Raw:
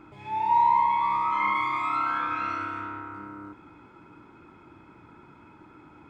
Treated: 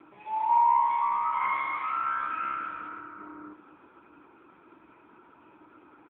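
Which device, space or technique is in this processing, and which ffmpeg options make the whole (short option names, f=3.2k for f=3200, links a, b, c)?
telephone: -filter_complex "[0:a]asettb=1/sr,asplit=3[a][b][c];[a]atrim=end=1.564[d];[b]atrim=start=1.56:end=3.2,asetpts=PTS-STARTPTS,afade=t=in:d=0.004:c=qsin,afade=t=out:st=1.636:d=0.004:c=qsin,equalizer=f=160:t=o:w=0.33:g=10,equalizer=f=400:t=o:w=0.33:g=-7,equalizer=f=800:t=o:w=0.33:g=-11[e];[c]atrim=start=3.196[f];[d][e]acrossfade=d=0.004:c1=hsin:c2=qsin[g];[g][f]acrossfade=d=0.004:c1=qsin:c2=hsin,highpass=290,lowpass=3.4k,asplit=2[h][i];[i]adelay=287,lowpass=f=1k:p=1,volume=-13dB,asplit=2[j][k];[k]adelay=287,lowpass=f=1k:p=1,volume=0.42,asplit=2[l][m];[m]adelay=287,lowpass=f=1k:p=1,volume=0.42,asplit=2[n][o];[o]adelay=287,lowpass=f=1k:p=1,volume=0.42[p];[h][j][l][n][p]amix=inputs=5:normalize=0" -ar 8000 -c:a libopencore_amrnb -b:a 6700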